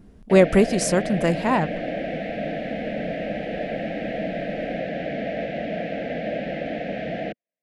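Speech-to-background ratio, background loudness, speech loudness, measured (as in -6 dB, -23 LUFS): 8.5 dB, -29.0 LUFS, -20.5 LUFS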